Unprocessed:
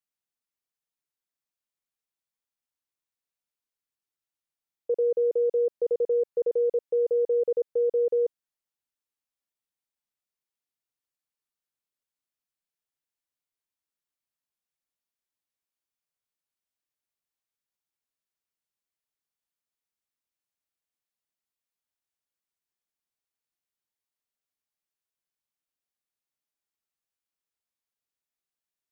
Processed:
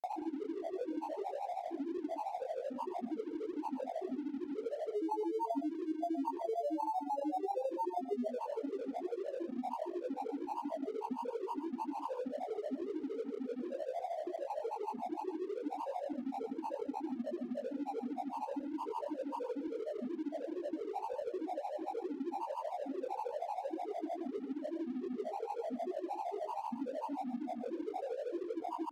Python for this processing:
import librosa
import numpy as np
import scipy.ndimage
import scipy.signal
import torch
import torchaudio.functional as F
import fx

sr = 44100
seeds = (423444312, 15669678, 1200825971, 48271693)

p1 = fx.bin_compress(x, sr, power=0.2)
p2 = fx.highpass(p1, sr, hz=210.0, slope=6)
p3 = fx.over_compress(p2, sr, threshold_db=-28.0, ratio=-0.5)
p4 = 10.0 ** (-33.5 / 20.0) * np.tanh(p3 / 10.0 ** (-33.5 / 20.0))
p5 = p3 + F.gain(torch.from_numpy(p4), -8.0).numpy()
p6 = fx.spec_topn(p5, sr, count=16)
p7 = np.sign(p6) * np.maximum(np.abs(p6) - 10.0 ** (-52.5 / 20.0), 0.0)
p8 = fx.granulator(p7, sr, seeds[0], grain_ms=100.0, per_s=13.0, spray_ms=100.0, spread_st=12)
p9 = p8 + 10.0 ** (-11.0 / 20.0) * np.pad(p8, (int(117 * sr / 1000.0), 0))[:len(p8)]
y = fx.band_squash(p9, sr, depth_pct=40)